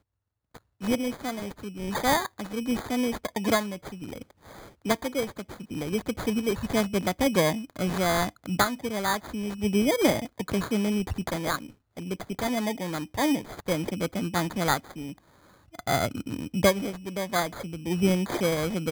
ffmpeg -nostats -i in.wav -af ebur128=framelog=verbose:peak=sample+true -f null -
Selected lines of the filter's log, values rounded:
Integrated loudness:
  I:         -27.9 LUFS
  Threshold: -38.4 LUFS
Loudness range:
  LRA:         3.8 LU
  Threshold: -48.4 LUFS
  LRA low:   -30.3 LUFS
  LRA high:  -26.5 LUFS
Sample peak:
  Peak:       -9.4 dBFS
True peak:
  Peak:       -8.1 dBFS